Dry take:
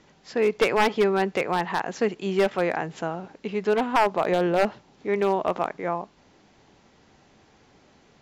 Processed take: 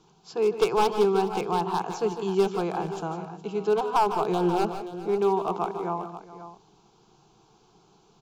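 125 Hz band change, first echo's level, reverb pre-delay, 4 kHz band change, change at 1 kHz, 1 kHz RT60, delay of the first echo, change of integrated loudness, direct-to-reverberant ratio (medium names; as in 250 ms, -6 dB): 0.0 dB, -11.0 dB, no reverb, -3.0 dB, 0.0 dB, no reverb, 152 ms, -1.5 dB, no reverb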